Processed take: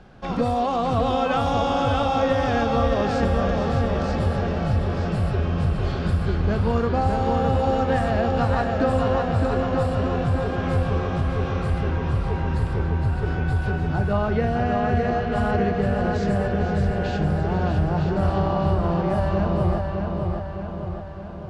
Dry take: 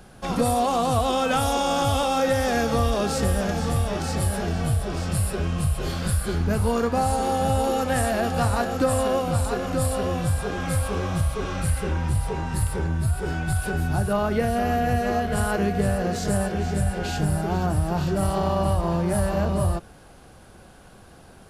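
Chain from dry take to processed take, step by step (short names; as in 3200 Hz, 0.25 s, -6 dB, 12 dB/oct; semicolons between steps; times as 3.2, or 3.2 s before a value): air absorption 170 m; darkening echo 0.611 s, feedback 58%, low-pass 4700 Hz, level -4 dB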